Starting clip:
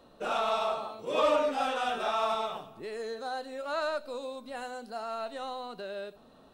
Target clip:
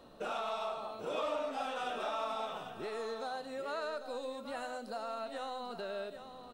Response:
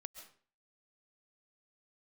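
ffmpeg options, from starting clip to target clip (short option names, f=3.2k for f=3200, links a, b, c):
-filter_complex "[0:a]acompressor=threshold=-40dB:ratio=2.5,aecho=1:1:794:0.316,asplit=2[a][b];[1:a]atrim=start_sample=2205[c];[b][c]afir=irnorm=-1:irlink=0,volume=-2.5dB[d];[a][d]amix=inputs=2:normalize=0,volume=-2dB"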